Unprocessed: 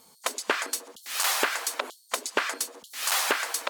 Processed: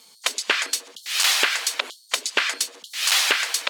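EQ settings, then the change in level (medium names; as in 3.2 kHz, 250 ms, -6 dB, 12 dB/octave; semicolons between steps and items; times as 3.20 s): frequency weighting D; -1.0 dB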